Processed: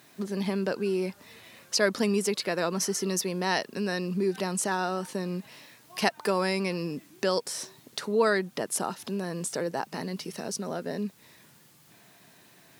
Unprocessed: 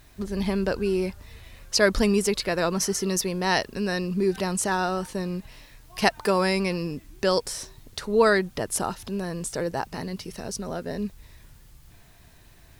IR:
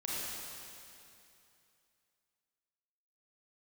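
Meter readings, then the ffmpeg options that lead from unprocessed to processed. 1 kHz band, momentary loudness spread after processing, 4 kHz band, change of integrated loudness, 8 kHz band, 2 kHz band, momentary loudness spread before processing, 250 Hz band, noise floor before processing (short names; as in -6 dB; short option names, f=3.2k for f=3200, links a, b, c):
-4.0 dB, 11 LU, -3.0 dB, -3.5 dB, -2.5 dB, -4.0 dB, 13 LU, -3.5 dB, -53 dBFS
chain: -filter_complex "[0:a]highpass=f=160:w=0.5412,highpass=f=160:w=1.3066,asplit=2[a][b];[b]acompressor=threshold=-31dB:ratio=6,volume=2.5dB[c];[a][c]amix=inputs=2:normalize=0,volume=-6.5dB"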